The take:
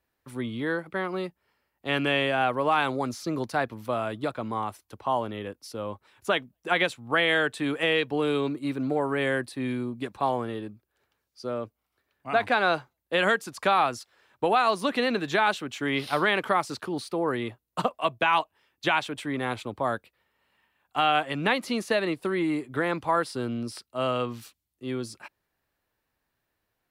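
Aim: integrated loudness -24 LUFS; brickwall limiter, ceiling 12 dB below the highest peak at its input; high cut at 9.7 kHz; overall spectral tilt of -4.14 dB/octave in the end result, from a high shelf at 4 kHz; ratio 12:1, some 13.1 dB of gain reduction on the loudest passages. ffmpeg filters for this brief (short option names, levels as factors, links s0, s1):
-af "lowpass=9700,highshelf=f=4000:g=-6.5,acompressor=threshold=0.0251:ratio=12,volume=7.5,alimiter=limit=0.2:level=0:latency=1"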